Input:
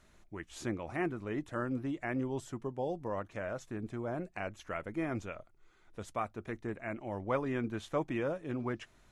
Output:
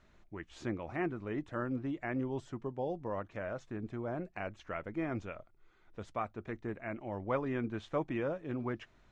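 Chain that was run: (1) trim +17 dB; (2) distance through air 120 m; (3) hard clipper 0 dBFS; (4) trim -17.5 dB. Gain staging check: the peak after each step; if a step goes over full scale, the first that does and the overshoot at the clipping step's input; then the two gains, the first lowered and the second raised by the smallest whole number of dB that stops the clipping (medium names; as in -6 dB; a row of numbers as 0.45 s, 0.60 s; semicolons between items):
-3.5 dBFS, -4.0 dBFS, -4.0 dBFS, -21.5 dBFS; nothing clips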